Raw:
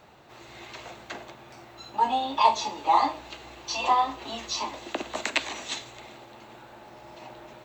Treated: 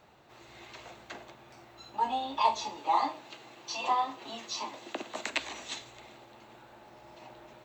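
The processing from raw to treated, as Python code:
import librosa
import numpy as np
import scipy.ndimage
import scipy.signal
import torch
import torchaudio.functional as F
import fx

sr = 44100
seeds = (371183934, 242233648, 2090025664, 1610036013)

y = fx.highpass(x, sr, hz=120.0, slope=24, at=(2.76, 5.26))
y = y * librosa.db_to_amplitude(-6.0)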